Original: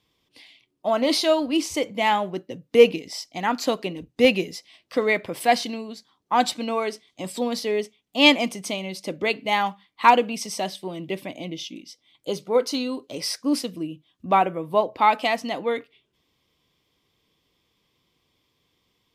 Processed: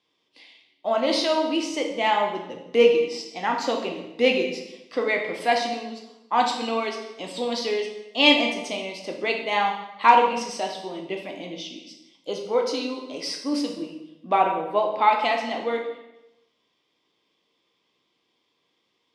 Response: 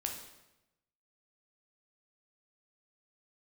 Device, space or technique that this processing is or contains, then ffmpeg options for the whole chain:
supermarket ceiling speaker: -filter_complex "[0:a]asettb=1/sr,asplit=3[link_01][link_02][link_03];[link_01]atrim=end=6.534[link_04];[link_02]atrim=start=6.53:end=8.22,asetpts=PTS-STARTPTS,afade=type=in:duration=0.004:curve=qsin,afade=type=out:start_time=1.686:duration=0.004:curve=qsin,equalizer=frequency=3700:width=1.1:gain=5.5[link_05];[link_03]atrim=start=8.216[link_06];[link_04][link_05]acrossfade=duration=0.004:curve1=hsin:curve2=qsin[link_07];[link_07][link_06]acrossfade=duration=0.004:curve1=qsin:curve2=hsin,highpass=260,lowpass=5900[link_08];[1:a]atrim=start_sample=2205[link_09];[link_08][link_09]afir=irnorm=-1:irlink=0,volume=-1dB"

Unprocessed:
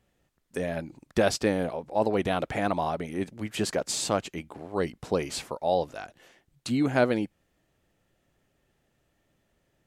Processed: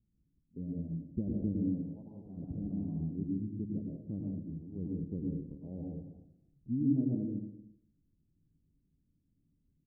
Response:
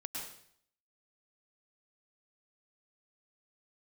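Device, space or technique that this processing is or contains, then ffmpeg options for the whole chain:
next room: -filter_complex "[0:a]asettb=1/sr,asplit=3[link_01][link_02][link_03];[link_01]atrim=end=1.934[link_04];[link_02]atrim=start=1.93:end=2.37,asetpts=PTS-STARTPTS,afade=type=in:duration=0.004:curve=qsin,afade=type=out:start_time=0.436:duration=0.004:curve=qsin,lowshelf=frequency=570:width_type=q:width=1.5:gain=-13[link_05];[link_03]atrim=start=2.366[link_06];[link_04][link_05]acrossfade=duration=0.004:curve1=hsin:curve2=qsin[link_07];[link_07][link_06]acrossfade=duration=0.004:curve1=qsin:curve2=hsin,lowpass=frequency=260:width=0.5412,lowpass=frequency=260:width=1.3066,aecho=1:1:234:0.158[link_08];[1:a]atrim=start_sample=2205[link_09];[link_08][link_09]afir=irnorm=-1:irlink=0"

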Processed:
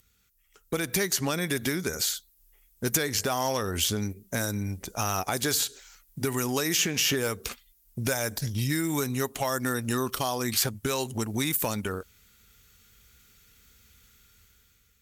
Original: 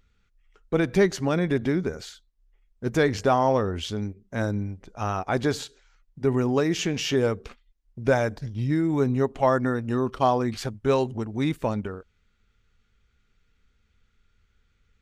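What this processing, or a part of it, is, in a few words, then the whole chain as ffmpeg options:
FM broadcast chain: -filter_complex "[0:a]highpass=45,dynaudnorm=framelen=360:gausssize=5:maxgain=9.5dB,acrossover=split=1100|2200|4900[link_01][link_02][link_03][link_04];[link_01]acompressor=threshold=-25dB:ratio=4[link_05];[link_02]acompressor=threshold=-31dB:ratio=4[link_06];[link_03]acompressor=threshold=-38dB:ratio=4[link_07];[link_04]acompressor=threshold=-43dB:ratio=4[link_08];[link_05][link_06][link_07][link_08]amix=inputs=4:normalize=0,aemphasis=mode=production:type=50fm,alimiter=limit=-15dB:level=0:latency=1:release=285,asoftclip=type=hard:threshold=-17.5dB,lowpass=frequency=15000:width=0.5412,lowpass=frequency=15000:width=1.3066,aemphasis=mode=production:type=50fm,volume=-1.5dB"

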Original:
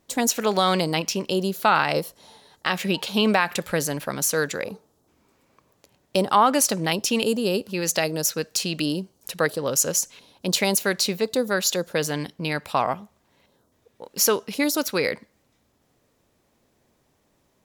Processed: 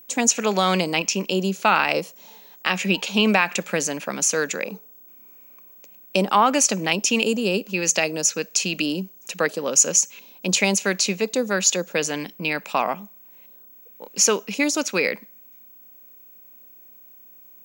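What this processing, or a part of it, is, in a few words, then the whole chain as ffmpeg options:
old television with a line whistle: -af "highpass=frequency=190:width=0.5412,highpass=frequency=190:width=1.3066,equalizer=frequency=190:width_type=q:width=4:gain=6,equalizer=frequency=2500:width_type=q:width=4:gain=9,equalizer=frequency=4000:width_type=q:width=4:gain=-3,equalizer=frequency=6600:width_type=q:width=4:gain=9,lowpass=frequency=8800:width=0.5412,lowpass=frequency=8800:width=1.3066,aeval=exprs='val(0)+0.00562*sin(2*PI*15734*n/s)':channel_layout=same"

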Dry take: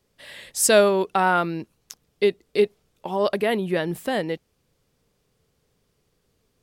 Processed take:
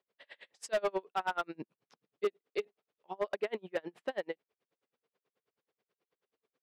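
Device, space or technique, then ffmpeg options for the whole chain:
helicopter radio: -filter_complex "[0:a]asettb=1/sr,asplit=3[link_01][link_02][link_03];[link_01]atrim=end=1.554[link_04];[link_02]atrim=start=1.55:end=2.25,asetpts=PTS-STARTPTS,afade=type=in:duration=0.004:curve=qsin,afade=type=out:start_time=0.696:duration=0.004:curve=qsin,equalizer=frequency=150:width=0.7:gain=12.5[link_05];[link_03]atrim=start=2.246[link_06];[link_04][link_05]acrossfade=duration=0.004:curve1=hsin:curve2=qsin[link_07];[link_07][link_06]acrossfade=duration=0.004:curve1=qsin:curve2=hsin,highpass=390,lowpass=2900,aeval=exprs='val(0)*pow(10,-35*(0.5-0.5*cos(2*PI*9.3*n/s))/20)':channel_layout=same,asoftclip=type=hard:threshold=-20.5dB,volume=-4.5dB"

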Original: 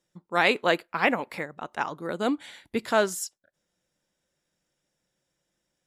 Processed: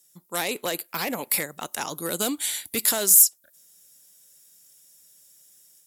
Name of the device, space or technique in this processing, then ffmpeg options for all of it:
FM broadcast chain: -filter_complex "[0:a]highpass=49,dynaudnorm=framelen=340:gausssize=3:maxgain=5.5dB,acrossover=split=780|2300[link_01][link_02][link_03];[link_01]acompressor=threshold=-23dB:ratio=4[link_04];[link_02]acompressor=threshold=-35dB:ratio=4[link_05];[link_03]acompressor=threshold=-37dB:ratio=4[link_06];[link_04][link_05][link_06]amix=inputs=3:normalize=0,aemphasis=mode=production:type=75fm,alimiter=limit=-16dB:level=0:latency=1:release=22,asoftclip=type=hard:threshold=-20dB,lowpass=frequency=15000:width=0.5412,lowpass=frequency=15000:width=1.3066,aemphasis=mode=production:type=75fm,volume=-1dB"

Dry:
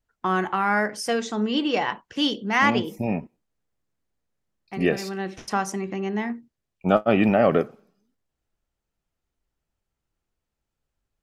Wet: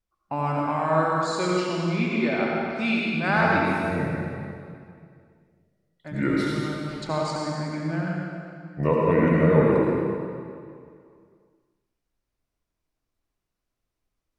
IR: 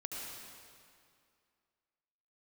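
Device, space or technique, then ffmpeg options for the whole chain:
slowed and reverbed: -filter_complex "[0:a]asetrate=34398,aresample=44100[link_01];[1:a]atrim=start_sample=2205[link_02];[link_01][link_02]afir=irnorm=-1:irlink=0"

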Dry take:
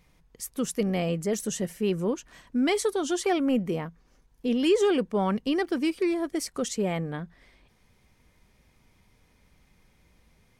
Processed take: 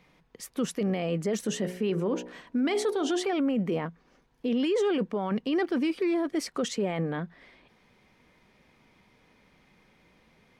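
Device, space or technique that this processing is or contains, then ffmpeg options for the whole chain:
DJ mixer with the lows and highs turned down: -filter_complex "[0:a]asettb=1/sr,asplit=3[link_01][link_02][link_03];[link_01]atrim=end=1.474[link_04];[link_02]atrim=start=1.47:end=3.33,asetpts=PTS-STARTPTS,afade=type=in:duration=0.004:curve=qsin,afade=type=out:start_time=1.856:duration=0.004:curve=qsin,bandreject=frequency=60.43:width_type=h:width=4,bandreject=frequency=120.86:width_type=h:width=4,bandreject=frequency=181.29:width_type=h:width=4,bandreject=frequency=241.72:width_type=h:width=4,bandreject=frequency=302.15:width_type=h:width=4,bandreject=frequency=362.58:width_type=h:width=4,bandreject=frequency=423.01:width_type=h:width=4,bandreject=frequency=483.44:width_type=h:width=4,bandreject=frequency=543.87:width_type=h:width=4,bandreject=frequency=604.3:width_type=h:width=4,bandreject=frequency=664.73:width_type=h:width=4,bandreject=frequency=725.16:width_type=h:width=4,bandreject=frequency=785.59:width_type=h:width=4,bandreject=frequency=846.02:width_type=h:width=4,bandreject=frequency=906.45:width_type=h:width=4,bandreject=frequency=966.88:width_type=h:width=4[link_05];[link_03]atrim=start=3.326[link_06];[link_04][link_05]acrossfade=duration=0.004:curve1=hsin:curve2=qsin[link_07];[link_07][link_06]acrossfade=duration=0.004:curve1=qsin:curve2=hsin,acrossover=split=150 4500:gain=0.178 1 0.224[link_08][link_09][link_10];[link_08][link_09][link_10]amix=inputs=3:normalize=0,alimiter=level_in=1.5dB:limit=-24dB:level=0:latency=1:release=12,volume=-1.5dB,volume=5dB"

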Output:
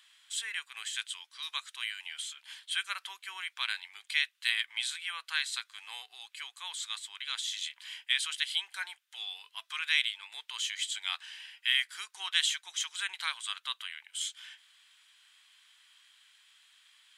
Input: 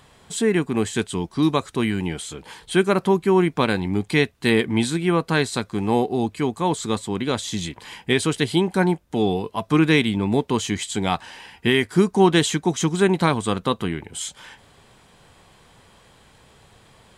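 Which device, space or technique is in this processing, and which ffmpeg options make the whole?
headphones lying on a table: -af "highpass=frequency=1500:width=0.5412,highpass=frequency=1500:width=1.3066,equalizer=frequency=3200:width_type=o:width=0.56:gain=6.5,volume=-7.5dB"

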